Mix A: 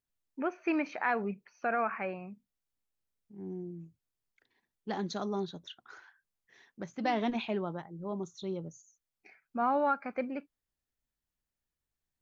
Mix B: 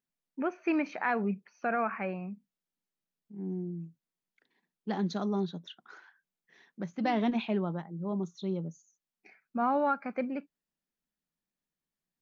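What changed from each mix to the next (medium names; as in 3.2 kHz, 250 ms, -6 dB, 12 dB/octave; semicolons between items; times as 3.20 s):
second voice: add low-pass 5.7 kHz 12 dB/octave; master: add resonant low shelf 130 Hz -9.5 dB, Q 3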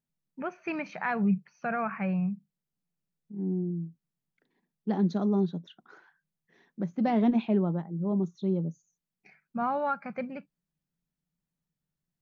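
first voice: add resonant low shelf 210 Hz +10 dB, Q 3; second voice: add tilt shelf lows +6.5 dB, about 840 Hz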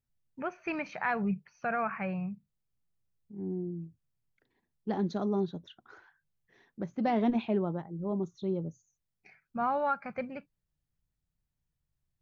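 master: add resonant low shelf 130 Hz +9.5 dB, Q 3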